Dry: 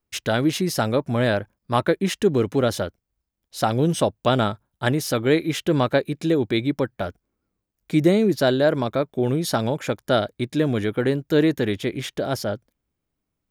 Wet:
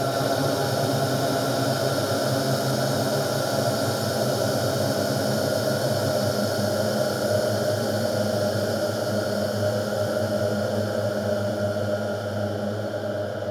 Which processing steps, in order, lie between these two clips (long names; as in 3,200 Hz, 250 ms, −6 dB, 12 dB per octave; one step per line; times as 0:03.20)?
extreme stretch with random phases 50×, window 0.50 s, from 0:12.33
echo with a time of its own for lows and highs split 450 Hz, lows 204 ms, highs 121 ms, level −3 dB